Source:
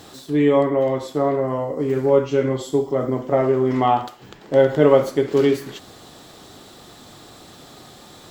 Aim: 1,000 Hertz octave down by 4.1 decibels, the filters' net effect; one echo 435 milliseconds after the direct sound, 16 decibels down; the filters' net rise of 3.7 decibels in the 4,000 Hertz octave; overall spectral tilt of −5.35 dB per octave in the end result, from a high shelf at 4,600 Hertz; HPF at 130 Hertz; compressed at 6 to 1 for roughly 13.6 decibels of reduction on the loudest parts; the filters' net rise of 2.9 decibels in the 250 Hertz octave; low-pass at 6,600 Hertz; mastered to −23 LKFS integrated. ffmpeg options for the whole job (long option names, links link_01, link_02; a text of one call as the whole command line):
ffmpeg -i in.wav -af "highpass=130,lowpass=6600,equalizer=frequency=250:width_type=o:gain=4,equalizer=frequency=1000:width_type=o:gain=-6.5,equalizer=frequency=4000:width_type=o:gain=7.5,highshelf=frequency=4600:gain=-4,acompressor=threshold=-24dB:ratio=6,aecho=1:1:435:0.158,volume=5.5dB" out.wav